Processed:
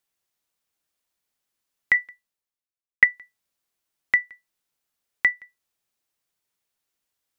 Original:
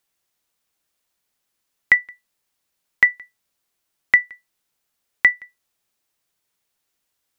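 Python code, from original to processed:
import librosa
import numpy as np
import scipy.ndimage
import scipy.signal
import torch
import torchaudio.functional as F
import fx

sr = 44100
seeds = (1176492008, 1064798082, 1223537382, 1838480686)

y = fx.band_widen(x, sr, depth_pct=70, at=(1.94, 3.04))
y = y * 10.0 ** (-5.5 / 20.0)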